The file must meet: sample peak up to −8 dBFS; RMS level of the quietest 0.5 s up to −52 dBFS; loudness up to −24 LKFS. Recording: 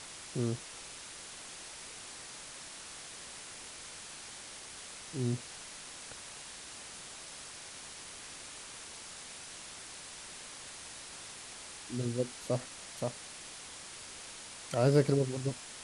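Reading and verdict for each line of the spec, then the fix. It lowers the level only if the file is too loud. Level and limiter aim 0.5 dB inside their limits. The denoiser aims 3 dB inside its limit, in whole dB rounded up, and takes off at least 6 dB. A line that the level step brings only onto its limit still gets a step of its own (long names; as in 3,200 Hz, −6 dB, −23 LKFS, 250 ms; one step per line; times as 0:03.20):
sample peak −14.0 dBFS: in spec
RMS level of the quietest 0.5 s −48 dBFS: out of spec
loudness −39.0 LKFS: in spec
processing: broadband denoise 7 dB, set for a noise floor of −48 dBFS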